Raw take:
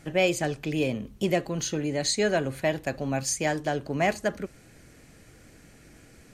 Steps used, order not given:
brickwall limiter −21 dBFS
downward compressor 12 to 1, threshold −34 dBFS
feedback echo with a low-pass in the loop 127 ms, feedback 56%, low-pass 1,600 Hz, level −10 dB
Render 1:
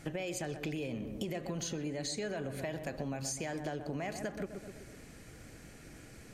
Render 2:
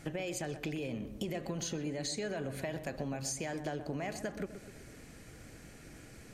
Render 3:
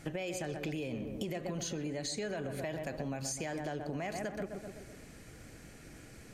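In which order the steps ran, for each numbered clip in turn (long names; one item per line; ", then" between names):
brickwall limiter, then feedback echo with a low-pass in the loop, then downward compressor
brickwall limiter, then downward compressor, then feedback echo with a low-pass in the loop
feedback echo with a low-pass in the loop, then brickwall limiter, then downward compressor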